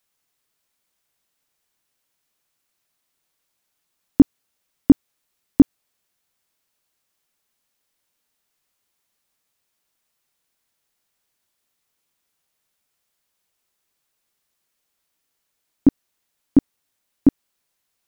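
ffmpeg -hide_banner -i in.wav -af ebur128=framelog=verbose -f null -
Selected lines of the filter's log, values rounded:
Integrated loudness:
  I:         -19.5 LUFS
  Threshold: -30.5 LUFS
Loudness range:
  LRA:         7.8 LU
  Threshold: -44.8 LUFS
  LRA low:   -30.0 LUFS
  LRA high:  -22.2 LUFS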